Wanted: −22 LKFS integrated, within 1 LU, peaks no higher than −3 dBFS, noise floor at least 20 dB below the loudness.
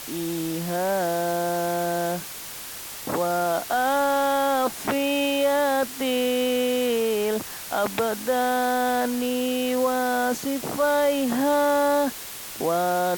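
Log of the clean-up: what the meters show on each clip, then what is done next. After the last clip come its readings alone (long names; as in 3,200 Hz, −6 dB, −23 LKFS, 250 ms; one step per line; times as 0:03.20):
background noise floor −37 dBFS; target noise floor −44 dBFS; integrated loudness −24.0 LKFS; sample peak −12.0 dBFS; target loudness −22.0 LKFS
→ broadband denoise 7 dB, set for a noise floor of −37 dBFS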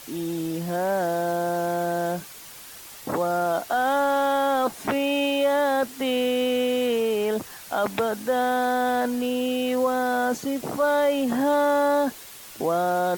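background noise floor −43 dBFS; target noise floor −44 dBFS
→ broadband denoise 6 dB, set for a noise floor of −43 dBFS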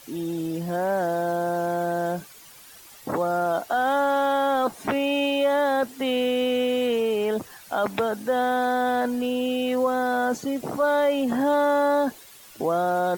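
background noise floor −48 dBFS; integrated loudness −24.0 LKFS; sample peak −13.0 dBFS; target loudness −22.0 LKFS
→ level +2 dB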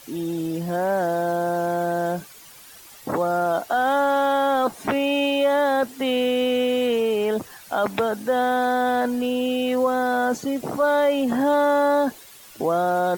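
integrated loudness −22.0 LKFS; sample peak −11.0 dBFS; background noise floor −46 dBFS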